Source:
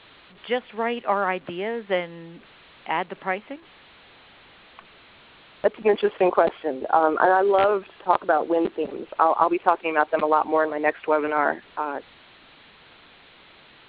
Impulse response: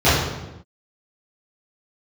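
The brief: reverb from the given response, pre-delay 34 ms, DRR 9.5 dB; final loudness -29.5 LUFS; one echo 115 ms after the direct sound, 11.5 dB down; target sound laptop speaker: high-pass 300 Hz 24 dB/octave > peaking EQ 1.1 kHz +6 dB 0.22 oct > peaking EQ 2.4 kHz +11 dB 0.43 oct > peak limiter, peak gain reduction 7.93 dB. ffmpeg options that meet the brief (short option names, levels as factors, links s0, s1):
-filter_complex "[0:a]aecho=1:1:115:0.266,asplit=2[s0][s1];[1:a]atrim=start_sample=2205,adelay=34[s2];[s1][s2]afir=irnorm=-1:irlink=0,volume=0.0188[s3];[s0][s3]amix=inputs=2:normalize=0,highpass=f=300:w=0.5412,highpass=f=300:w=1.3066,equalizer=f=1100:t=o:w=0.22:g=6,equalizer=f=2400:t=o:w=0.43:g=11,volume=0.422,alimiter=limit=0.158:level=0:latency=1"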